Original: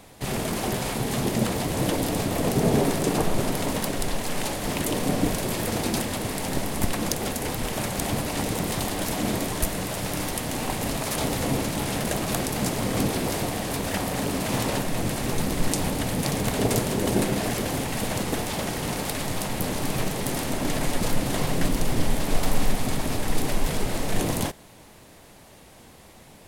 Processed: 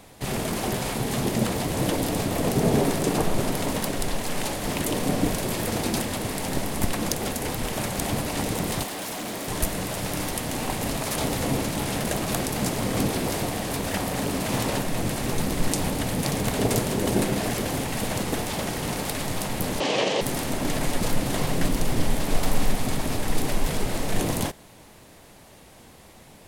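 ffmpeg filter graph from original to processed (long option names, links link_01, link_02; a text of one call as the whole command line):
ffmpeg -i in.wav -filter_complex "[0:a]asettb=1/sr,asplit=3[link_01][link_02][link_03];[link_01]atrim=end=8.834[link_04];[link_02]atrim=start=8.83:end=9.48,asetpts=PTS-STARTPTS,afade=type=in:duration=0.004:curve=qsin,afade=type=out:start_time=0.646:duration=0.004:curve=qsin,highpass=frequency=350:poles=1,volume=29.5dB,asoftclip=hard,volume=-29.5dB[link_05];[link_03]atrim=start=9.476[link_06];[link_04][link_05]acrossfade=duration=0.004:curve1=hsin:curve2=qsin[link_07];[link_07][link_06]acrossfade=duration=0.004:curve1=qsin:curve2=hsin,asettb=1/sr,asplit=3[link_08][link_09][link_10];[link_08]atrim=end=19.804[link_11];[link_09]atrim=start=19.8:end=20.21,asetpts=PTS-STARTPTS,afade=type=in:duration=0.004:curve=qsin,afade=type=out:start_time=0.406:duration=0.004:curve=qsin,acontrast=51,highpass=330,equalizer=frequency=520:width_type=q:width=4:gain=8,equalizer=frequency=1400:width_type=q:width=4:gain=-6,equalizer=frequency=3000:width_type=q:width=4:gain=7,lowpass=frequency=6300:width=0.5412,lowpass=frequency=6300:width=1.3066[link_12];[link_10]atrim=start=20.206[link_13];[link_11][link_12]acrossfade=duration=0.004:curve1=hsin:curve2=qsin[link_14];[link_14][link_13]acrossfade=duration=0.004:curve1=qsin:curve2=hsin" out.wav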